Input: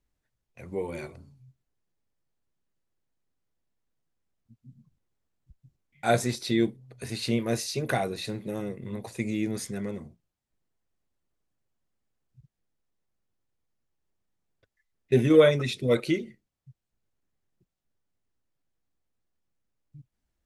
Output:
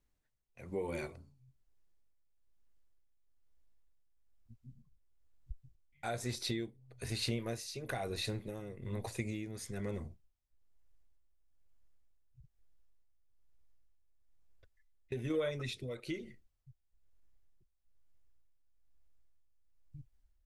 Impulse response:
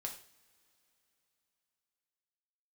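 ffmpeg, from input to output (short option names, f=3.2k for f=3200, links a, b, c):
-af "asubboost=boost=8.5:cutoff=59,acompressor=threshold=-31dB:ratio=6,tremolo=f=1.1:d=0.6,volume=-1dB"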